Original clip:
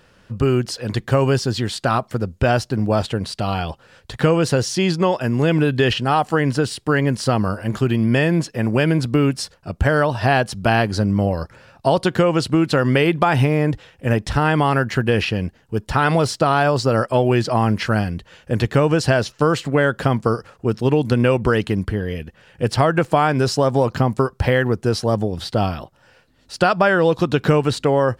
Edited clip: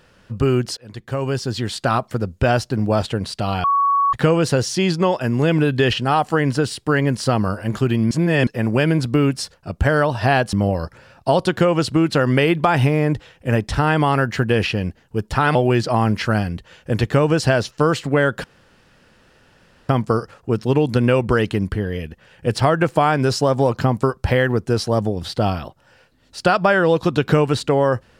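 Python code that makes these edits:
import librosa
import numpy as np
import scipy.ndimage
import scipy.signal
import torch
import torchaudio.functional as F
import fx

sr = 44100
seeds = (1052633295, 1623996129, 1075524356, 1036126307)

y = fx.edit(x, sr, fx.fade_in_from(start_s=0.77, length_s=1.04, floor_db=-20.5),
    fx.bleep(start_s=3.64, length_s=0.49, hz=1120.0, db=-13.5),
    fx.reverse_span(start_s=8.11, length_s=0.36),
    fx.cut(start_s=10.53, length_s=0.58),
    fx.cut(start_s=16.13, length_s=1.03),
    fx.insert_room_tone(at_s=20.05, length_s=1.45), tone=tone)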